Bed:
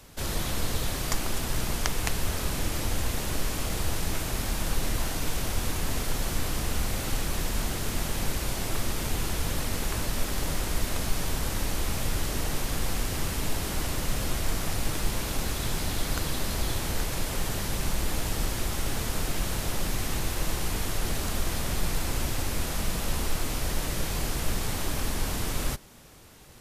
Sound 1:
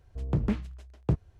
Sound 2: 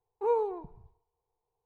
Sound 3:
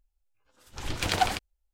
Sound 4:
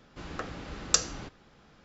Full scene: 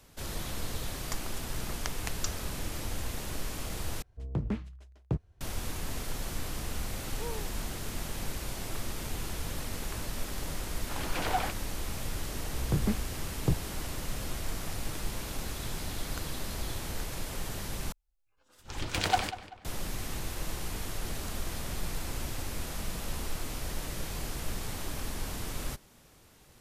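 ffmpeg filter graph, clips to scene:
-filter_complex "[1:a]asplit=2[s0][s1];[3:a]asplit=2[s2][s3];[0:a]volume=0.447[s4];[s2]asplit=2[s5][s6];[s6]highpass=f=720:p=1,volume=10,asoftclip=type=tanh:threshold=0.335[s7];[s5][s7]amix=inputs=2:normalize=0,lowpass=f=1100:p=1,volume=0.501[s8];[s3]asplit=2[s9][s10];[s10]adelay=193,lowpass=f=3700:p=1,volume=0.2,asplit=2[s11][s12];[s12]adelay=193,lowpass=f=3700:p=1,volume=0.39,asplit=2[s13][s14];[s14]adelay=193,lowpass=f=3700:p=1,volume=0.39,asplit=2[s15][s16];[s16]adelay=193,lowpass=f=3700:p=1,volume=0.39[s17];[s9][s11][s13][s15][s17]amix=inputs=5:normalize=0[s18];[s4]asplit=3[s19][s20][s21];[s19]atrim=end=4.024[s22];[s0]atrim=end=1.39,asetpts=PTS-STARTPTS,volume=0.562[s23];[s20]atrim=start=5.406:end=17.924[s24];[s18]atrim=end=1.73,asetpts=PTS-STARTPTS,volume=0.75[s25];[s21]atrim=start=19.646[s26];[4:a]atrim=end=1.84,asetpts=PTS-STARTPTS,volume=0.211,afade=t=in:d=0.004:c=hsin,afade=t=out:st=1.836:d=0.004:c=hsin,adelay=1300[s27];[2:a]atrim=end=1.65,asetpts=PTS-STARTPTS,volume=0.188,afade=t=in:d=0.004:c=hsin,afade=t=out:st=1.646:d=0.004:c=hsin,adelay=6960[s28];[s8]atrim=end=1.73,asetpts=PTS-STARTPTS,volume=0.376,afade=t=in:d=0.004:c=hsin,afade=t=out:st=1.726:d=0.004:c=hsin,adelay=10130[s29];[s1]atrim=end=1.39,asetpts=PTS-STARTPTS,volume=0.794,afade=t=in:d=0.004:c=hsin,afade=t=out:st=1.386:d=0.004:c=hsin,adelay=12390[s30];[s22][s23]acrossfade=d=0.004:c1=hsin:c2=hsin[s31];[s31][s24]acrossfade=d=0.004:c1=hsin:c2=hsin[s32];[s32][s25]acrossfade=d=0.004:c1=hsin:c2=hsin[s33];[s33][s26]acrossfade=d=0.004:c1=hsin:c2=hsin[s34];[s34][s27][s28][s29][s30]amix=inputs=5:normalize=0"

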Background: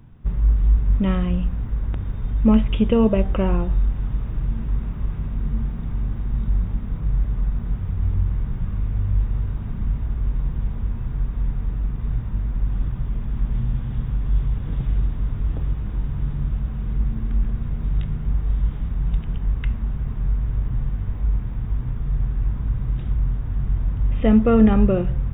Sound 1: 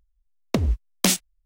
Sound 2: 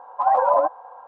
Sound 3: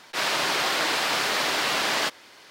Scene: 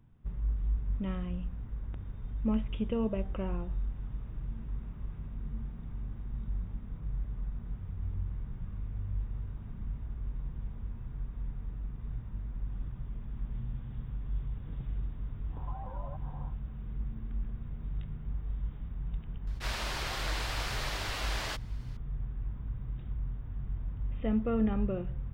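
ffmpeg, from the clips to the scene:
-filter_complex "[0:a]volume=0.188[s0];[2:a]acompressor=threshold=0.0178:ratio=6:attack=3.2:release=140:knee=1:detection=peak,atrim=end=1.07,asetpts=PTS-STARTPTS,volume=0.299,afade=t=in:d=0.1,afade=t=out:st=0.97:d=0.1,adelay=15490[s1];[3:a]atrim=end=2.5,asetpts=PTS-STARTPTS,volume=0.237,afade=t=in:d=0.004:c=hsin,afade=t=out:st=2.496:d=0.004:c=hsin,adelay=19470[s2];[s0][s1][s2]amix=inputs=3:normalize=0"

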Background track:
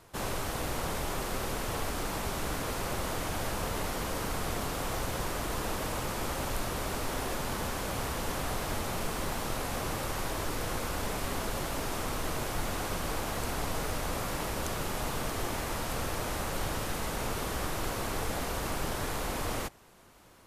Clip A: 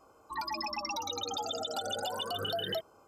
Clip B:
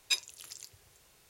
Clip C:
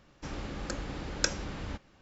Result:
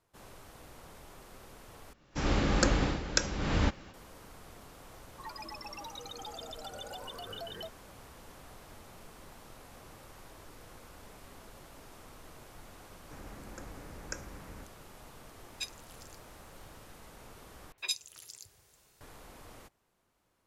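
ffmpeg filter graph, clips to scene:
-filter_complex "[3:a]asplit=2[s0][s1];[2:a]asplit=2[s2][s3];[0:a]volume=0.119[s4];[s0]dynaudnorm=f=180:g=3:m=6.68[s5];[s1]asuperstop=centerf=3700:order=4:qfactor=1.1[s6];[s3]acrossover=split=2800[s7][s8];[s8]adelay=60[s9];[s7][s9]amix=inputs=2:normalize=0[s10];[s4]asplit=3[s11][s12][s13];[s11]atrim=end=1.934[s14];[s5]atrim=end=2.01,asetpts=PTS-STARTPTS,volume=0.562[s15];[s12]atrim=start=3.936:end=17.724[s16];[s10]atrim=end=1.29,asetpts=PTS-STARTPTS,volume=0.794[s17];[s13]atrim=start=19.006[s18];[1:a]atrim=end=3.07,asetpts=PTS-STARTPTS,volume=0.355,afade=t=in:d=0.004:c=hsin,afade=t=out:st=3.066:d=0.004:c=hsin,adelay=4880[s19];[s6]atrim=end=2.01,asetpts=PTS-STARTPTS,volume=0.316,afade=t=in:d=0.004:c=hsin,afade=t=out:st=2.006:d=0.004:c=hsin,adelay=12880[s20];[s2]atrim=end=1.29,asetpts=PTS-STARTPTS,volume=0.335,afade=t=in:d=0.004:c=hsin,afade=t=out:st=1.286:d=0.004:c=hsin,adelay=15500[s21];[s14][s15]acrossfade=d=0.004:c1=hsin:c2=hsin[s22];[s22][s16]acrossfade=d=0.004:c1=hsin:c2=hsin[s23];[s23][s17]acrossfade=d=0.004:c1=hsin:c2=hsin[s24];[s24][s18]acrossfade=d=0.004:c1=hsin:c2=hsin[s25];[s25][s19][s20][s21]amix=inputs=4:normalize=0"

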